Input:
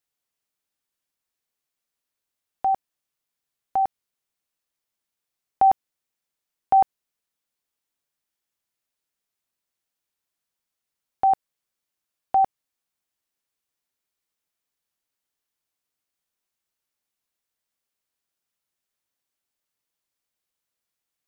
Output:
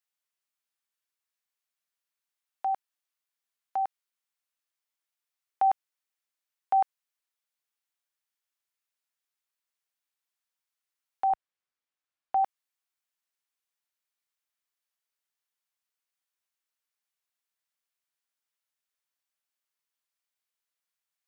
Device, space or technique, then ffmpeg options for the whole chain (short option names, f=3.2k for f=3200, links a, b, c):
filter by subtraction: -filter_complex "[0:a]asettb=1/sr,asplit=3[a][b][c];[a]atrim=end=11.304[d];[b]atrim=start=11.3:end=12.44,asetpts=PTS-STARTPTS,afade=t=in:d=0.004:c=qsin,afade=t=out:st=1.136:d=0.004:c=qsin,aemphasis=mode=reproduction:type=bsi[e];[c]atrim=start=12.436[f];[d][e]acrossfade=d=0.004:c1=hsin:c2=qsin[g];[g][f]acrossfade=d=0.004:c1=qsin:c2=hsin,asplit=2[h][i];[i]lowpass=1.4k,volume=-1[j];[h][j]amix=inputs=2:normalize=0,volume=-5dB"